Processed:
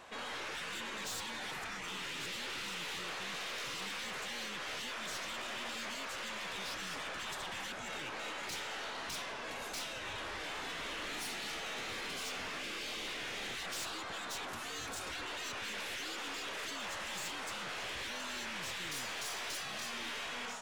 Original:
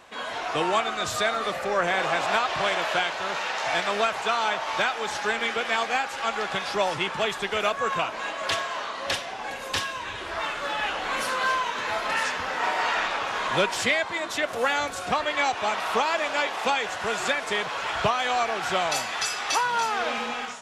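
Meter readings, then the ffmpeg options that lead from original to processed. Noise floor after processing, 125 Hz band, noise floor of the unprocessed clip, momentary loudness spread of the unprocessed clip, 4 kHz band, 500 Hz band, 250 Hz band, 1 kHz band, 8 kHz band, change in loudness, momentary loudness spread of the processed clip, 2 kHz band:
-43 dBFS, -12.5 dB, -35 dBFS, 5 LU, -10.0 dB, -19.5 dB, -12.5 dB, -19.0 dB, -8.0 dB, -14.0 dB, 2 LU, -13.5 dB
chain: -af "afftfilt=real='re*lt(hypot(re,im),0.0794)':imag='im*lt(hypot(re,im),0.0794)':win_size=1024:overlap=0.75,aeval=exprs='(tanh(56.2*val(0)+0.25)-tanh(0.25))/56.2':c=same,volume=-2.5dB"

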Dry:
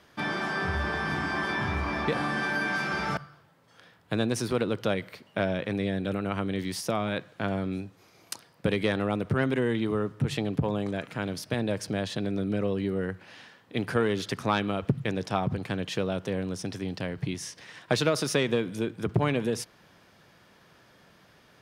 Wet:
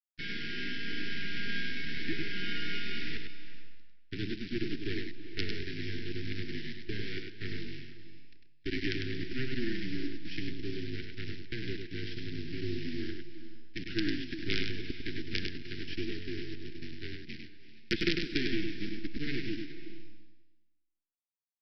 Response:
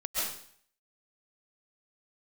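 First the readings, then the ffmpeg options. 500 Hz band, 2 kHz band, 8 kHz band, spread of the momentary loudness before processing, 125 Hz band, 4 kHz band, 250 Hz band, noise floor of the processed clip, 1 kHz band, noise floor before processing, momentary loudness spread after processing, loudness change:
-13.0 dB, -6.5 dB, under -15 dB, 7 LU, -10.0 dB, -1.5 dB, -7.5 dB, -68 dBFS, -24.0 dB, -59 dBFS, 11 LU, -8.0 dB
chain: -filter_complex "[0:a]highpass=f=370:t=q:w=0.5412,highpass=f=370:t=q:w=1.307,lowpass=f=3.3k:t=q:w=0.5176,lowpass=f=3.3k:t=q:w=0.7071,lowpass=f=3.3k:t=q:w=1.932,afreqshift=-140,aresample=11025,acrusher=bits=4:dc=4:mix=0:aa=0.000001,aresample=44100,agate=range=-15dB:threshold=-42dB:ratio=16:detection=peak,asuperstop=centerf=810:order=12:qfactor=0.64,aecho=1:1:100:0.562,asplit=2[a][b];[1:a]atrim=start_sample=2205,asetrate=22491,aresample=44100,adelay=66[c];[b][c]afir=irnorm=-1:irlink=0,volume=-25dB[d];[a][d]amix=inputs=2:normalize=0"

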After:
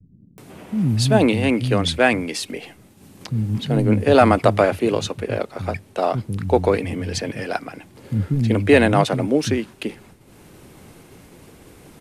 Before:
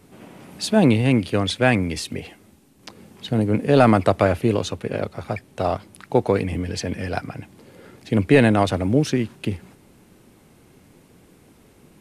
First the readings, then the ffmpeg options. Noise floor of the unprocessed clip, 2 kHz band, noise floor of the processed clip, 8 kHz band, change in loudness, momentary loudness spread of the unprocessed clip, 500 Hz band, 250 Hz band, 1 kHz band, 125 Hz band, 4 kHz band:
-54 dBFS, +2.5 dB, -50 dBFS, +2.5 dB, +1.0 dB, 15 LU, +2.0 dB, 0.0 dB, +2.5 dB, +1.5 dB, +2.5 dB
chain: -filter_complex "[0:a]acompressor=mode=upward:threshold=-37dB:ratio=2.5,acrossover=split=210[a][b];[b]adelay=380[c];[a][c]amix=inputs=2:normalize=0,agate=range=-33dB:threshold=-45dB:ratio=3:detection=peak,volume=2.5dB"

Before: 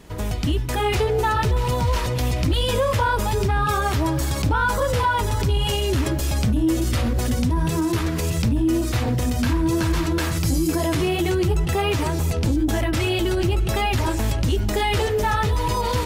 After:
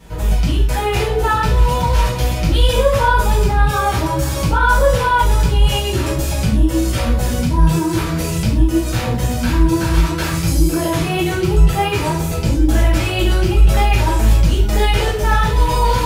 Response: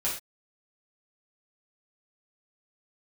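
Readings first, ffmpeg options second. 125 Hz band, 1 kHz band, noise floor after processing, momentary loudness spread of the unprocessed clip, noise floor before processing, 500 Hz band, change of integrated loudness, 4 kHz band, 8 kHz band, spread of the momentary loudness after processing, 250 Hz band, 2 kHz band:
+5.5 dB, +6.0 dB, -21 dBFS, 2 LU, -24 dBFS, +4.0 dB, +5.5 dB, +4.0 dB, +4.5 dB, 5 LU, +3.5 dB, +5.5 dB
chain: -filter_complex "[1:a]atrim=start_sample=2205[a];[0:a][a]afir=irnorm=-1:irlink=0,volume=-2dB"

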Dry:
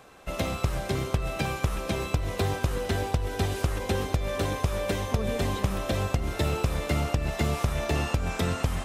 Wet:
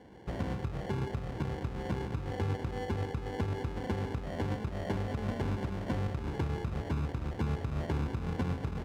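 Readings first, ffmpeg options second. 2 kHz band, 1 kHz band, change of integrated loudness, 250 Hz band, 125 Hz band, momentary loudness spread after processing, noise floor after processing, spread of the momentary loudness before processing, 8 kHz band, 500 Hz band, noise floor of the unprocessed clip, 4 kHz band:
-10.5 dB, -8.0 dB, -6.5 dB, -4.0 dB, -5.5 dB, 3 LU, -41 dBFS, 2 LU, -19.0 dB, -8.0 dB, -36 dBFS, -13.5 dB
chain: -filter_complex "[0:a]asuperstop=centerf=670:order=8:qfactor=3.3,acrossover=split=320[a][b];[b]acompressor=threshold=-34dB:ratio=6[c];[a][c]amix=inputs=2:normalize=0,bandreject=f=92.5:t=h:w=4,bandreject=f=185:t=h:w=4,bandreject=f=277.5:t=h:w=4,bandreject=f=370:t=h:w=4,bandreject=f=462.5:t=h:w=4,bandreject=f=555:t=h:w=4,bandreject=f=647.5:t=h:w=4,bandreject=f=740:t=h:w=4,bandreject=f=832.5:t=h:w=4,bandreject=f=925:t=h:w=4,bandreject=f=1.0175k:t=h:w=4,bandreject=f=1.11k:t=h:w=4,bandreject=f=1.2025k:t=h:w=4,bandreject=f=1.295k:t=h:w=4,bandreject=f=1.3875k:t=h:w=4,bandreject=f=1.48k:t=h:w=4,bandreject=f=1.5725k:t=h:w=4,bandreject=f=1.665k:t=h:w=4,bandreject=f=1.7575k:t=h:w=4,bandreject=f=1.85k:t=h:w=4,bandreject=f=1.9425k:t=h:w=4,bandreject=f=2.035k:t=h:w=4,bandreject=f=2.1275k:t=h:w=4,bandreject=f=2.22k:t=h:w=4,bandreject=f=2.3125k:t=h:w=4,bandreject=f=2.405k:t=h:w=4,bandreject=f=2.4975k:t=h:w=4,bandreject=f=2.59k:t=h:w=4,bandreject=f=2.6825k:t=h:w=4,bandreject=f=2.775k:t=h:w=4,bandreject=f=2.8675k:t=h:w=4,bandreject=f=2.96k:t=h:w=4,bandreject=f=3.0525k:t=h:w=4,bandreject=f=3.145k:t=h:w=4,bandreject=f=3.2375k:t=h:w=4,bandreject=f=3.33k:t=h:w=4,bandreject=f=3.4225k:t=h:w=4,bandreject=f=3.515k:t=h:w=4,acrusher=samples=35:mix=1:aa=0.000001,equalizer=f=110:w=1.5:g=2,alimiter=limit=-24dB:level=0:latency=1:release=309,highpass=66,aemphasis=mode=reproduction:type=75fm,asplit=2[d][e];[e]aecho=0:1:777:0.224[f];[d][f]amix=inputs=2:normalize=0"

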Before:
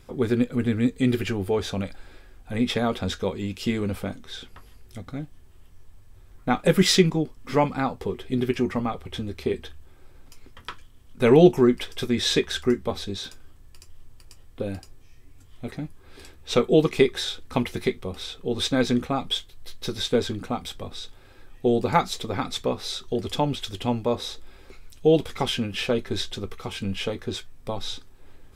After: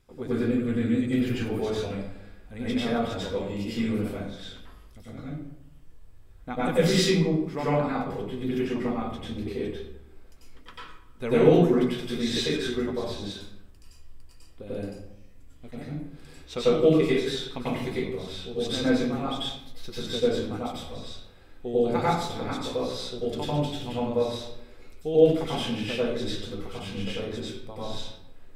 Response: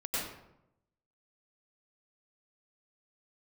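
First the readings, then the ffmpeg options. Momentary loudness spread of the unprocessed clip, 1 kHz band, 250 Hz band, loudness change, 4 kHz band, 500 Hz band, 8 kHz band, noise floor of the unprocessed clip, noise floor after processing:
17 LU, -3.5 dB, -2.0 dB, -2.0 dB, -4.5 dB, -1.5 dB, -5.5 dB, -50 dBFS, -49 dBFS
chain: -filter_complex "[1:a]atrim=start_sample=2205[a];[0:a][a]afir=irnorm=-1:irlink=0,volume=-8.5dB"

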